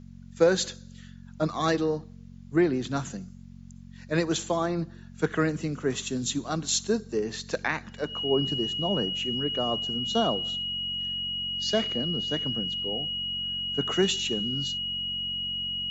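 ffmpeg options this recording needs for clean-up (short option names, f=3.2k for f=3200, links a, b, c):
-af "bandreject=f=45.7:t=h:w=4,bandreject=f=91.4:t=h:w=4,bandreject=f=137.1:t=h:w=4,bandreject=f=182.8:t=h:w=4,bandreject=f=228.5:t=h:w=4,bandreject=f=2.9k:w=30,agate=range=-21dB:threshold=-38dB"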